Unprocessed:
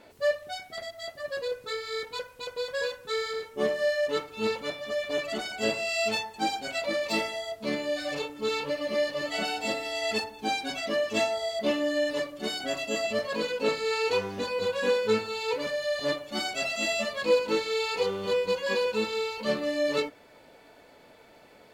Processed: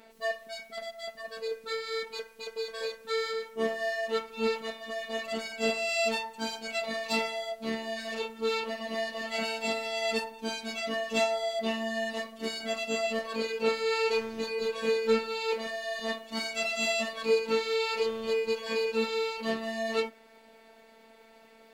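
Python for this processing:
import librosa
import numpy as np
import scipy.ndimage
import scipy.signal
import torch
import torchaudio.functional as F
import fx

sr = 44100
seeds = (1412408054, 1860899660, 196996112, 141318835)

y = fx.robotise(x, sr, hz=224.0)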